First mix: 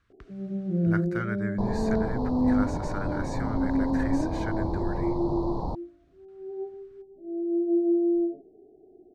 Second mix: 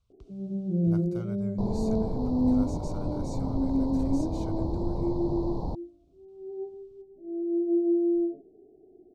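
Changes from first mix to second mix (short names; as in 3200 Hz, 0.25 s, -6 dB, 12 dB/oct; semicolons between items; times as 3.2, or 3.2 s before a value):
speech: add fixed phaser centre 730 Hz, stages 4; master: add bell 1400 Hz -10.5 dB 1.6 oct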